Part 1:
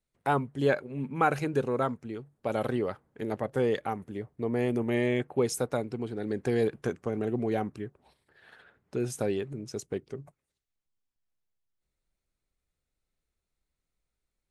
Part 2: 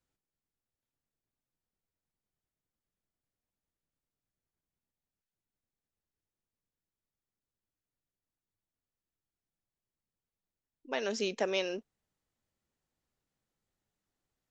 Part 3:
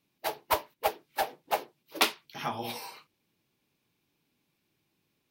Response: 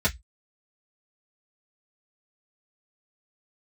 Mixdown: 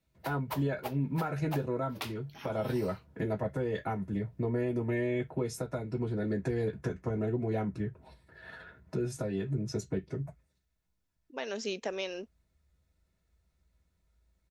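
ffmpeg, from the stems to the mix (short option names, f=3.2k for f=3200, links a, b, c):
-filter_complex "[0:a]acompressor=threshold=-42dB:ratio=2,volume=-0.5dB,asplit=2[a][b];[b]volume=-6dB[c];[1:a]adelay=450,volume=-2dB[d];[2:a]volume=-9.5dB[e];[3:a]atrim=start_sample=2205[f];[c][f]afir=irnorm=-1:irlink=0[g];[a][d][e][g]amix=inputs=4:normalize=0,alimiter=limit=-22dB:level=0:latency=1:release=256"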